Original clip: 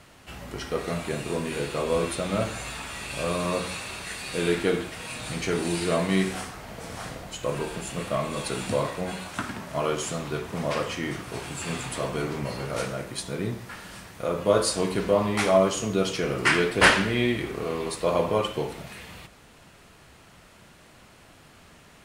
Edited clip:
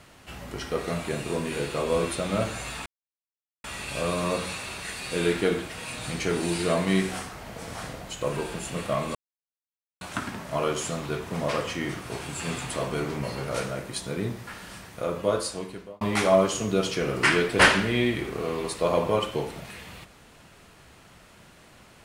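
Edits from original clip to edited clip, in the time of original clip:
2.86 s: insert silence 0.78 s
8.37–9.23 s: mute
14.13–15.23 s: fade out

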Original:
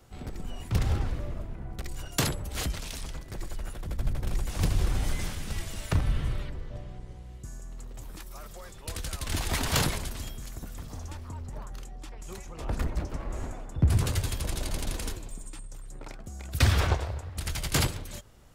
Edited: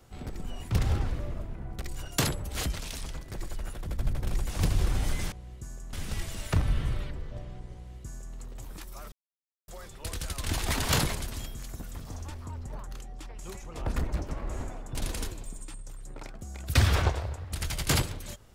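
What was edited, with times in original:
7.14–7.75 s: copy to 5.32 s
8.51 s: insert silence 0.56 s
13.78–14.80 s: delete

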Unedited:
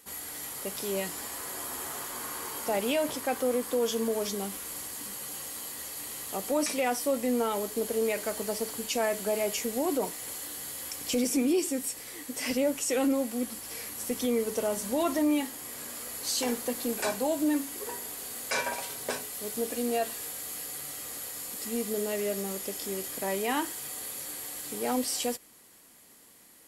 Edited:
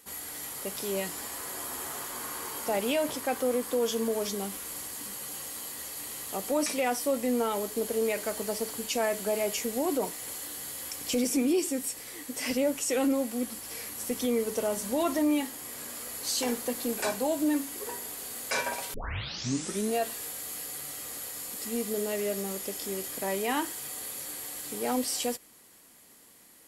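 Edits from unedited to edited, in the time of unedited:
18.94 s: tape start 1.01 s

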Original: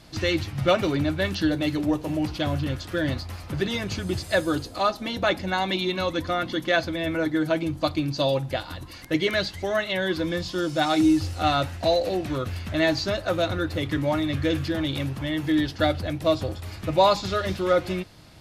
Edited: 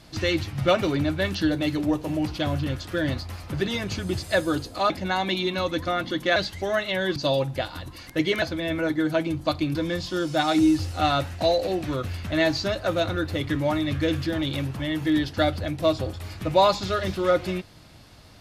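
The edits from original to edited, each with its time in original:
4.90–5.32 s: delete
6.78–8.11 s: swap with 9.37–10.17 s

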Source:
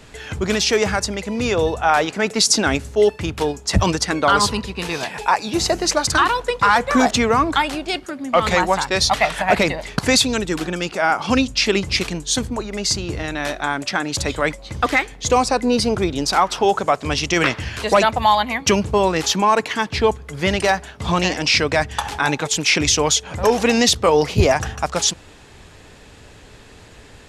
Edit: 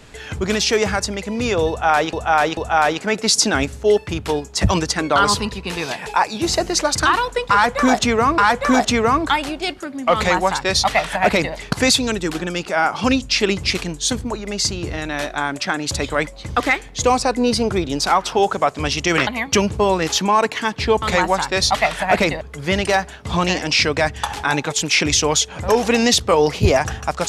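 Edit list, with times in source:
1.69–2.13 s: loop, 3 plays
6.64–7.50 s: loop, 2 plays
8.41–9.80 s: copy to 20.16 s
17.53–18.41 s: delete

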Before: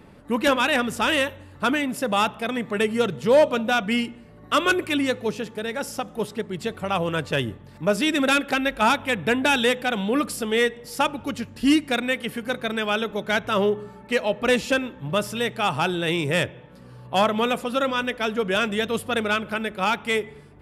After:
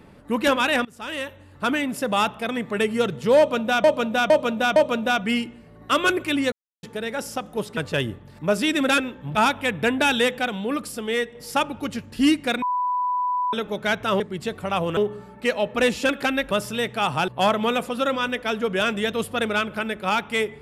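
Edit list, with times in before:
0.85–1.80 s: fade in, from -23.5 dB
3.38–3.84 s: loop, 4 plays
5.14–5.45 s: mute
6.39–7.16 s: move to 13.64 s
8.37–8.79 s: swap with 14.76–15.13 s
9.92–10.79 s: gain -3.5 dB
12.06–12.97 s: bleep 993 Hz -20.5 dBFS
15.90–17.03 s: delete

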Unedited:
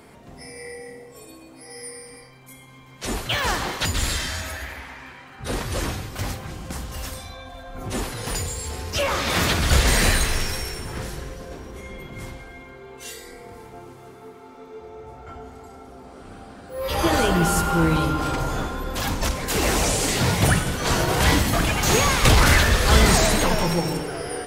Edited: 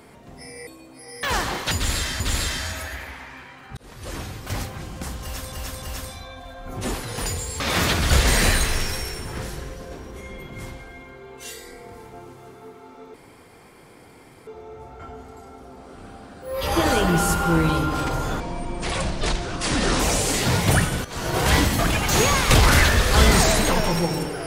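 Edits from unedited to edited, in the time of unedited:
0.67–1.29 s: delete
1.85–3.37 s: delete
3.89–4.34 s: loop, 2 plays
5.46–6.23 s: fade in linear
6.91–7.21 s: loop, 3 plays
8.69–9.20 s: delete
14.74 s: insert room tone 1.33 s
18.67–19.74 s: speed 67%
20.79–21.12 s: fade in quadratic, from -13 dB

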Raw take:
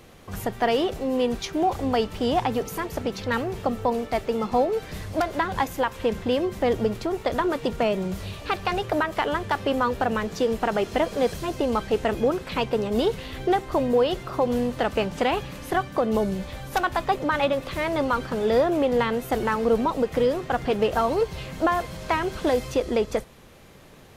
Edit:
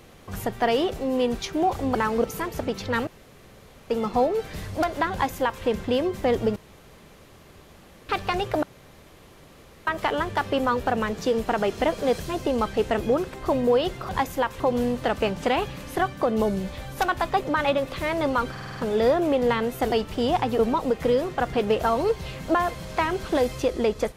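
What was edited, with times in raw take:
1.95–2.62 s: swap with 19.42–19.71 s
3.45–4.28 s: room tone
5.50–6.01 s: copy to 14.35 s
6.94–8.47 s: room tone
9.01 s: insert room tone 1.24 s
12.48–13.60 s: delete
18.26 s: stutter 0.05 s, 6 plays

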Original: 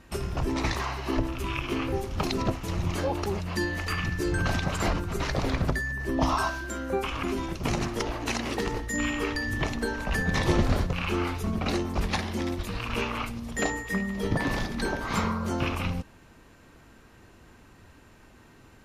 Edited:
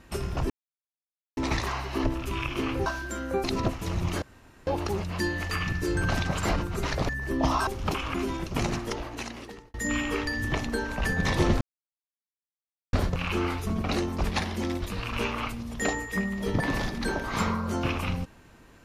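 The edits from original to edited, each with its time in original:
0.50 s: insert silence 0.87 s
1.99–2.26 s: swap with 6.45–7.03 s
3.04 s: insert room tone 0.45 s
5.46–5.87 s: delete
7.73–8.83 s: fade out linear
10.70 s: insert silence 1.32 s

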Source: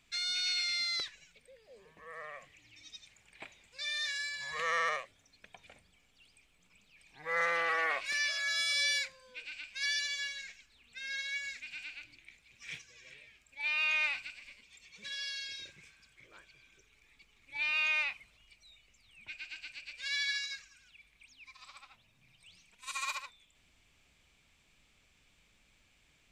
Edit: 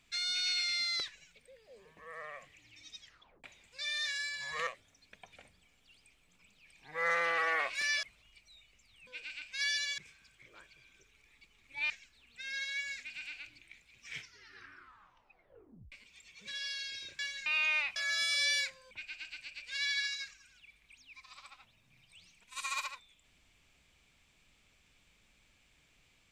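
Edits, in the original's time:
3.00 s: tape stop 0.44 s
4.67–4.98 s: delete
8.34–9.29 s: swap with 18.18–19.22 s
10.20–10.47 s: swap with 15.76–17.68 s
12.65 s: tape stop 1.84 s

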